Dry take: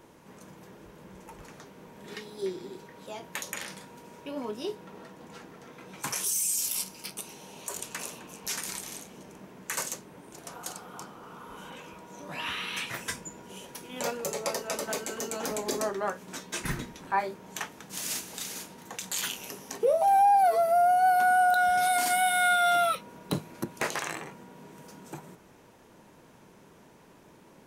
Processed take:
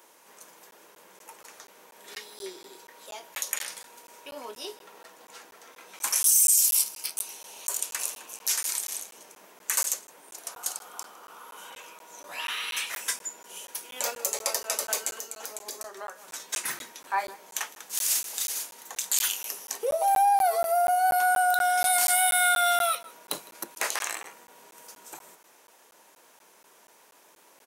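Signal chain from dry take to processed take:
high-pass filter 580 Hz 12 dB per octave
high-shelf EQ 5,300 Hz +11.5 dB
slap from a distant wall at 27 metres, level −20 dB
0:15.09–0:16.40: downward compressor 6 to 1, threshold −35 dBFS, peak gain reduction 11.5 dB
regular buffer underruns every 0.24 s, samples 512, zero, from 0:00.71

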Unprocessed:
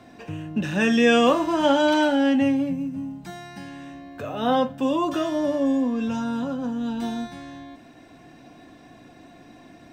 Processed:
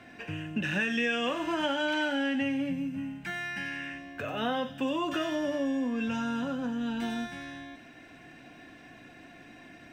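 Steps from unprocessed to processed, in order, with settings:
flat-topped bell 2,100 Hz +9 dB 1.3 octaves, from 0:02.97 +15.5 dB, from 0:03.97 +8.5 dB
downward compressor 6 to 1, threshold −22 dBFS, peak gain reduction 12 dB
delay with a high-pass on its return 93 ms, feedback 55%, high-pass 4,100 Hz, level −5 dB
level −4.5 dB

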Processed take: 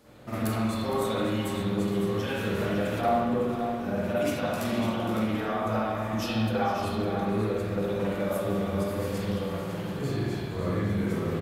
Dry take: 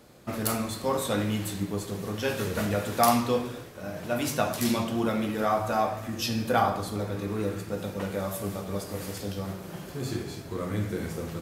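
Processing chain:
0:03.01–0:03.50: tilt shelving filter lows +9.5 dB, about 1,200 Hz
downward compressor, threshold −29 dBFS, peak gain reduction 15.5 dB
multi-tap delay 462/555 ms −14/−9.5 dB
spring reverb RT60 1.1 s, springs 45/55 ms, chirp 25 ms, DRR −9 dB
level −5 dB

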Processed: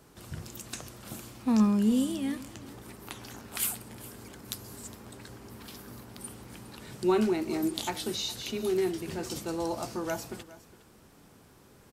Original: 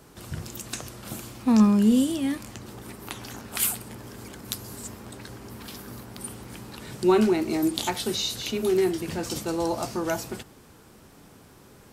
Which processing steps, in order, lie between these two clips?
single-tap delay 411 ms −18.5 dB
level −5.5 dB

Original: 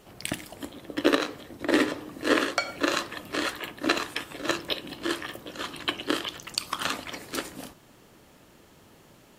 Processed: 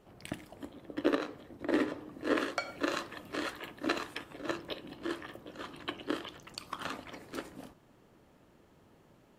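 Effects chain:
high-shelf EQ 2,300 Hz −11.5 dB, from 0:02.37 −6 dB, from 0:04.18 −11 dB
level −6 dB

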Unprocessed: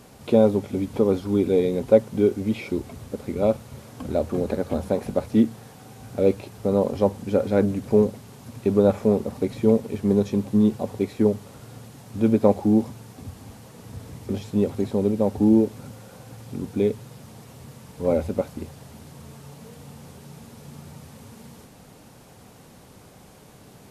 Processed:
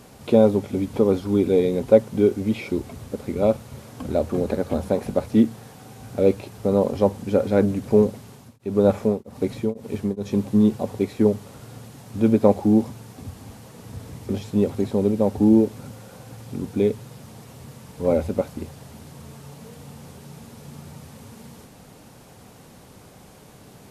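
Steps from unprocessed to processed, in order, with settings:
0:08.14–0:10.31: tremolo along a rectified sine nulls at 1.1 Hz → 2.8 Hz
level +1.5 dB

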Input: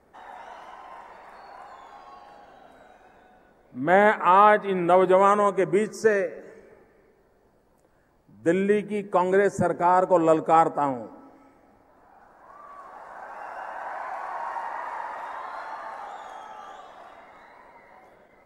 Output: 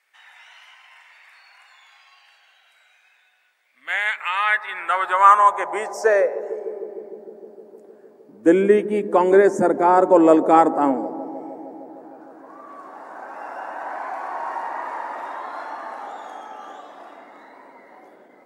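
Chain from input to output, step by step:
bucket-brigade delay 153 ms, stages 1,024, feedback 82%, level −17.5 dB
high-pass filter sweep 2,400 Hz → 280 Hz, 0:04.27–0:07.20
level +3 dB

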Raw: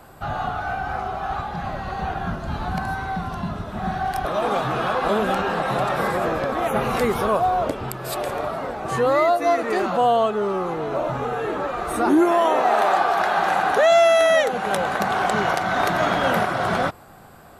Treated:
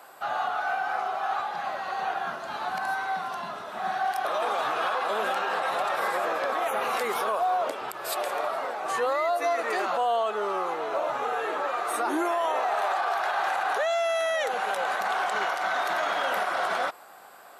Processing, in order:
high-pass filter 610 Hz 12 dB per octave
brickwall limiter −18.5 dBFS, peak gain reduction 10.5 dB

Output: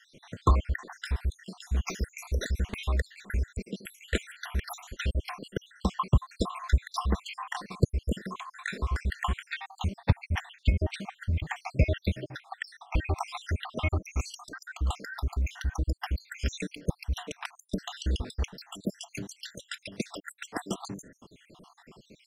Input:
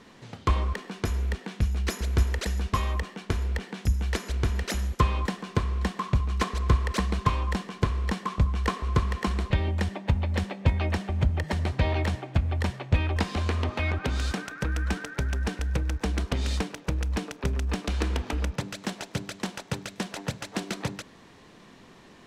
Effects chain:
time-frequency cells dropped at random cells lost 72%
level +2 dB

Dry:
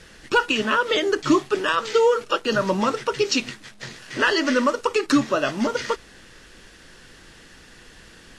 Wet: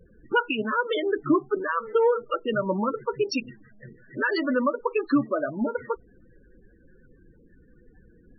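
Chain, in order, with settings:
adaptive Wiener filter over 15 samples
spectral peaks only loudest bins 16
level −3 dB

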